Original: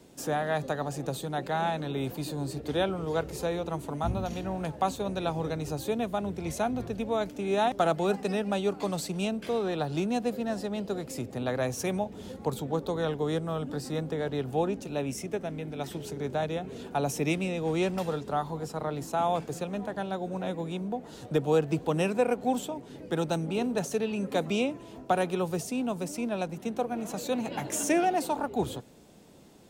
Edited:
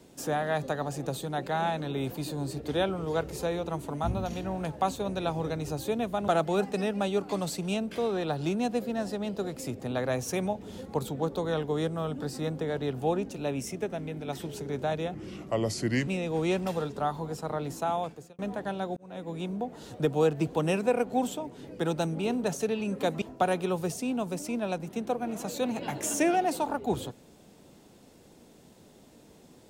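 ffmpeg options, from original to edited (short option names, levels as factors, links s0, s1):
-filter_complex "[0:a]asplit=7[s0][s1][s2][s3][s4][s5][s6];[s0]atrim=end=6.282[s7];[s1]atrim=start=7.788:end=16.654[s8];[s2]atrim=start=16.65:end=17.39,asetpts=PTS-STARTPTS,asetrate=34839,aresample=44100[s9];[s3]atrim=start=17.386:end=19.7,asetpts=PTS-STARTPTS,afade=t=out:st=1.704:d=0.61[s10];[s4]atrim=start=19.7:end=20.28,asetpts=PTS-STARTPTS,afade=t=in:d=0.004:c=hsin,afade=t=out:st=0.576:d=0.004:c=hsin[s11];[s5]atrim=start=20.28:end=24.532,asetpts=PTS-STARTPTS,afade=t=in:d=0.46[s12];[s6]atrim=start=24.908[s13];[s7][s8]acrossfade=d=0.004:c1=hsin:c2=hsin[s14];[s14][s9]acrossfade=d=0.004:c1=hsin:c2=hsin[s15];[s10][s11][s12]concat=n=3:v=0:a=1[s16];[s15][s16]acrossfade=d=0.004:c1=hsin:c2=hsin[s17];[s17][s13]acrossfade=d=0.004:c1=hsin:c2=hsin"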